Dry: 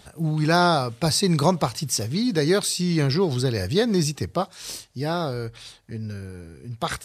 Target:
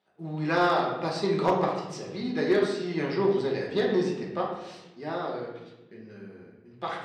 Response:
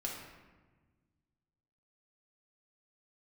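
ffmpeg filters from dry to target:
-filter_complex "[0:a]agate=range=0.2:threshold=0.01:ratio=16:detection=peak,aeval=exprs='0.562*(cos(1*acos(clip(val(0)/0.562,-1,1)))-cos(1*PI/2))+0.0282*(cos(7*acos(clip(val(0)/0.562,-1,1)))-cos(7*PI/2))':c=same,highpass=260,lowpass=2900[s0];[1:a]atrim=start_sample=2205,asetrate=61740,aresample=44100[s1];[s0][s1]afir=irnorm=-1:irlink=0,volume=5.62,asoftclip=hard,volume=0.178"

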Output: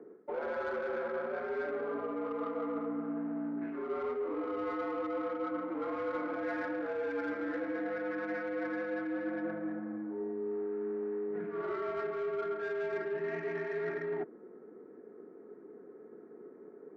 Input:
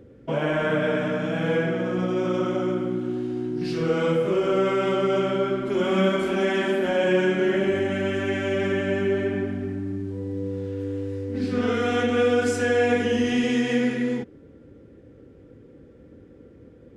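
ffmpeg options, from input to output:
-filter_complex "[0:a]highpass=f=410:t=q:w=0.5412,highpass=f=410:t=q:w=1.307,lowpass=f=2300:t=q:w=0.5176,lowpass=f=2300:t=q:w=0.7071,lowpass=f=2300:t=q:w=1.932,afreqshift=-78,adynamicsmooth=sensitivity=1.5:basefreq=1200,asplit=2[s0][s1];[s1]highpass=f=720:p=1,volume=4.47,asoftclip=type=tanh:threshold=0.224[s2];[s0][s2]amix=inputs=2:normalize=0,lowpass=f=1300:p=1,volume=0.501,areverse,acompressor=threshold=0.0178:ratio=12,areverse,volume=1.26"

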